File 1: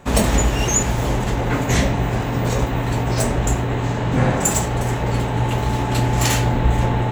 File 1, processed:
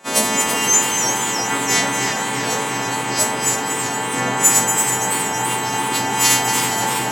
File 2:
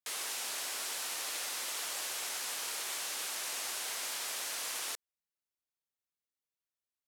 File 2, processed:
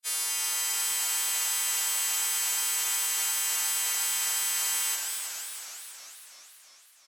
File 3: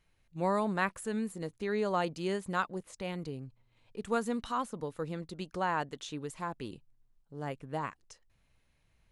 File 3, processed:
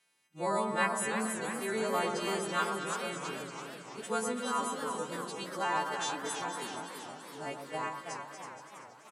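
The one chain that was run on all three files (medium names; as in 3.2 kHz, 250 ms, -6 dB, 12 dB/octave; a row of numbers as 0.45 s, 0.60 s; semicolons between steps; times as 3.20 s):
partials quantised in pitch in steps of 2 st; Bessel high-pass 250 Hz, order 4; echo whose repeats swap between lows and highs 118 ms, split 1.4 kHz, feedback 75%, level -5 dB; resampled via 32 kHz; modulated delay 327 ms, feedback 62%, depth 176 cents, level -8 dB; trim -1 dB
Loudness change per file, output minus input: +2.5 LU, +10.0 LU, +1.0 LU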